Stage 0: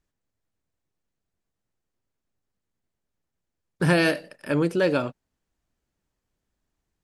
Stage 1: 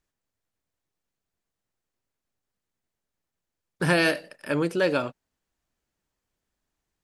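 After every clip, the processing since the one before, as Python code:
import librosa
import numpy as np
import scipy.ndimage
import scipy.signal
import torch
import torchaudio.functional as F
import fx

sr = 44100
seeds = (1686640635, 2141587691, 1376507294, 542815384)

y = fx.low_shelf(x, sr, hz=410.0, db=-6.0)
y = y * 10.0 ** (1.0 / 20.0)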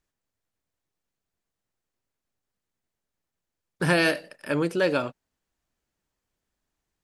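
y = x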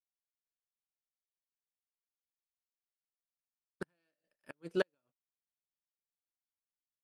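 y = fx.gate_flip(x, sr, shuts_db=-14.0, range_db=-25)
y = fx.upward_expand(y, sr, threshold_db=-44.0, expansion=2.5)
y = y * 10.0 ** (-3.0 / 20.0)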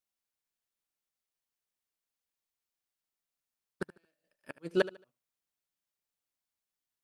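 y = fx.echo_feedback(x, sr, ms=74, feedback_pct=29, wet_db=-17.0)
y = y * 10.0 ** (4.5 / 20.0)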